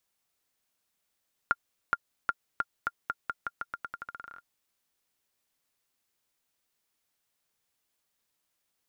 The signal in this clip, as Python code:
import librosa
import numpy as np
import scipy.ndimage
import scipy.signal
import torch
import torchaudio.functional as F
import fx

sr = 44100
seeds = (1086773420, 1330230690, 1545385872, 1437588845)

y = fx.bouncing_ball(sr, first_gap_s=0.42, ratio=0.86, hz=1400.0, decay_ms=41.0, level_db=-11.5)